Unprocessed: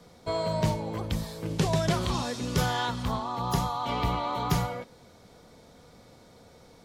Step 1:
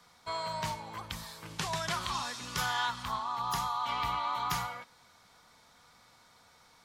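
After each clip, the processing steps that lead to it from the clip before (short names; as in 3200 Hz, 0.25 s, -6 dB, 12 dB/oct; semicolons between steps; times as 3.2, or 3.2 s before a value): resonant low shelf 720 Hz -12.5 dB, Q 1.5; gain -2 dB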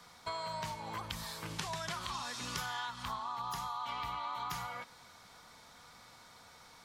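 compressor, threshold -41 dBFS, peak gain reduction 12.5 dB; gain +4 dB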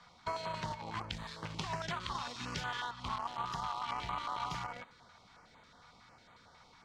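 in parallel at -4.5 dB: bit-crush 6-bit; on the sum: air absorption 130 m; stepped notch 11 Hz 350–5300 Hz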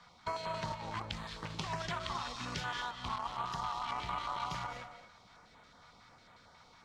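reverb RT60 0.25 s, pre-delay 0.175 s, DRR 8.5 dB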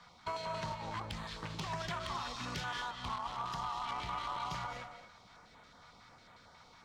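soft clip -31.5 dBFS, distortion -15 dB; gain +1 dB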